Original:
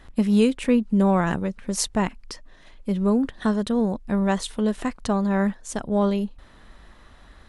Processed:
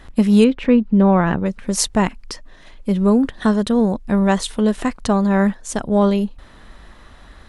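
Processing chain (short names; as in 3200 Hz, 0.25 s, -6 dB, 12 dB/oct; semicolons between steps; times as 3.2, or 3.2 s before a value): 0.44–1.46 air absorption 220 m; gain +6 dB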